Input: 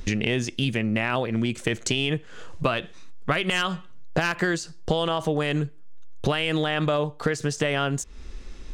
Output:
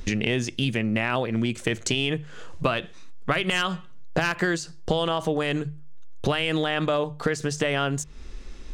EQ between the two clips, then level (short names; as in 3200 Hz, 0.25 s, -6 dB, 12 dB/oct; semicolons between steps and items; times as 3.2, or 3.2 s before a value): notches 50/100/150 Hz; 0.0 dB